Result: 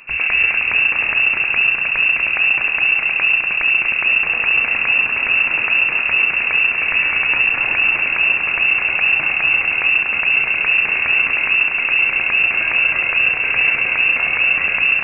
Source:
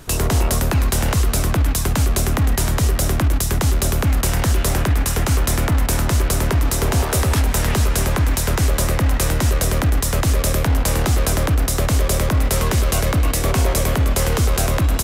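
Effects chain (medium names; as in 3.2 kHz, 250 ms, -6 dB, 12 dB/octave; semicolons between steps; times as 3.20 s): two-band feedback delay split 810 Hz, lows 85 ms, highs 241 ms, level -4.5 dB; frequency inversion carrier 2.7 kHz; trim -1.5 dB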